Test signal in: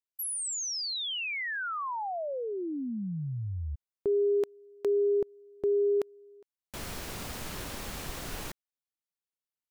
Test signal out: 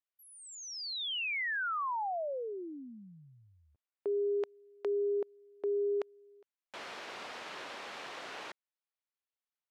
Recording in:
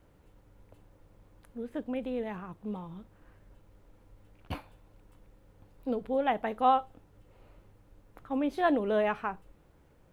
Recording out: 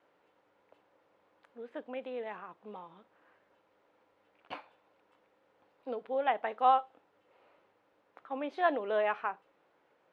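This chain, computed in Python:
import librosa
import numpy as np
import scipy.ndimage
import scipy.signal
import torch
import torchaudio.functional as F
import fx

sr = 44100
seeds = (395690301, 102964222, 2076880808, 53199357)

y = fx.bandpass_edges(x, sr, low_hz=520.0, high_hz=3500.0)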